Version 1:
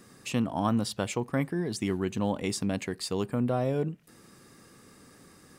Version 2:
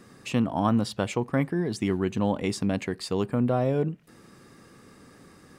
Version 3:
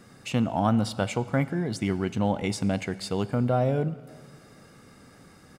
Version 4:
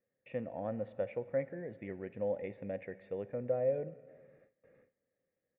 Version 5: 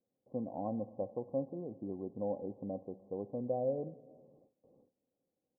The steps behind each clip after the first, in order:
high shelf 5200 Hz -9 dB; gain +3.5 dB
comb 1.4 ms, depth 32%; plate-style reverb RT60 2.1 s, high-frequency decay 0.95×, DRR 15.5 dB
vocal tract filter e; gate with hold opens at -54 dBFS
rippled Chebyshev low-pass 1100 Hz, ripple 9 dB; gain +6 dB

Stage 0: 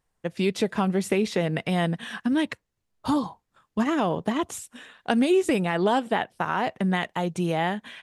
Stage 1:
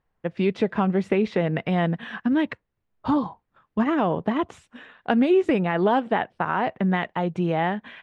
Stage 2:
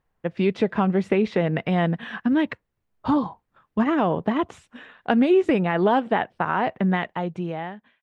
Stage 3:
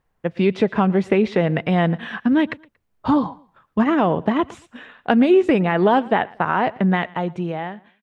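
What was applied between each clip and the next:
LPF 2400 Hz 12 dB/oct; gain +2 dB
ending faded out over 1.15 s; gain +1 dB
feedback echo 0.116 s, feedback 28%, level -23 dB; gain +3.5 dB

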